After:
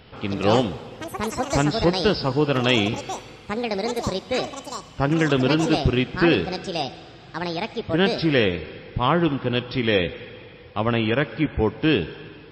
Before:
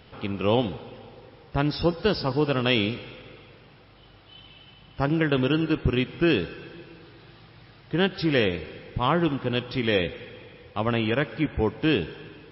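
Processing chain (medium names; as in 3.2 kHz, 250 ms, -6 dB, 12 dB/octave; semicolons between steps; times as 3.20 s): ever faster or slower copies 160 ms, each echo +7 st, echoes 2, each echo -6 dB; trim +3 dB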